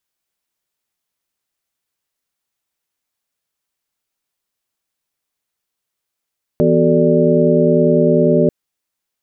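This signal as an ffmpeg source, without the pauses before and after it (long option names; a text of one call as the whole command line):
ffmpeg -f lavfi -i "aevalsrc='0.158*(sin(2*PI*164.81*t)+sin(2*PI*246.94*t)+sin(2*PI*369.99*t)+sin(2*PI*440*t)+sin(2*PI*587.33*t))':duration=1.89:sample_rate=44100" out.wav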